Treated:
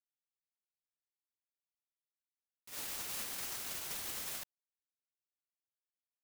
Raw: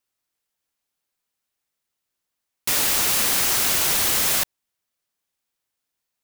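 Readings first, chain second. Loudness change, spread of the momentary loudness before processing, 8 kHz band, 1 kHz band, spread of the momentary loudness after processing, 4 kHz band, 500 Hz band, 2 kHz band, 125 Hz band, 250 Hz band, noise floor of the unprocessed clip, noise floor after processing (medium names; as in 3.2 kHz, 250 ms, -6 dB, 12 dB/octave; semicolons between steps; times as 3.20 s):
-21.5 dB, 5 LU, -21.5 dB, -21.5 dB, 6 LU, -21.5 dB, -21.5 dB, -21.5 dB, -21.5 dB, -21.5 dB, -82 dBFS, under -85 dBFS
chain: gate -16 dBFS, range -35 dB; trim +3 dB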